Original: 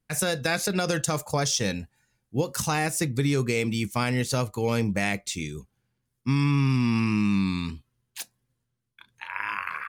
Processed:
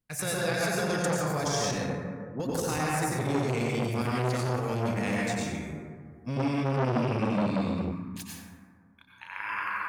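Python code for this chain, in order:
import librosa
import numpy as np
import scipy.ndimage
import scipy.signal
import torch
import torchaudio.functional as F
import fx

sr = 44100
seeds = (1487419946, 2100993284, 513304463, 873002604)

y = fx.cheby1_bandpass(x, sr, low_hz=130.0, high_hz=1800.0, order=5, at=(1.76, 2.4))
y = fx.rev_plate(y, sr, seeds[0], rt60_s=2.0, hf_ratio=0.3, predelay_ms=80, drr_db=-5.5)
y = fx.transformer_sat(y, sr, knee_hz=820.0)
y = y * 10.0 ** (-7.0 / 20.0)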